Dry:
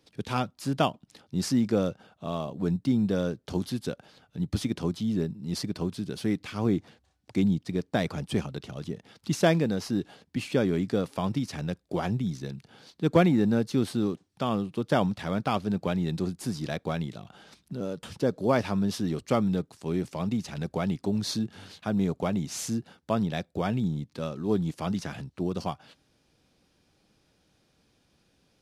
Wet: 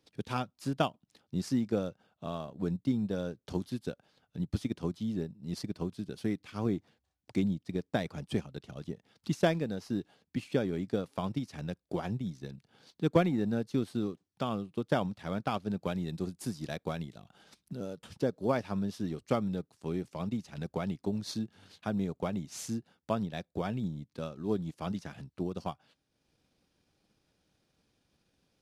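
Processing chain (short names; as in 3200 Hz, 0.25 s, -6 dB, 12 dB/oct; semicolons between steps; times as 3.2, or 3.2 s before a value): 15.79–17.97 high shelf 6100 Hz +5.5 dB; transient shaper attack +4 dB, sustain -6 dB; gain -7 dB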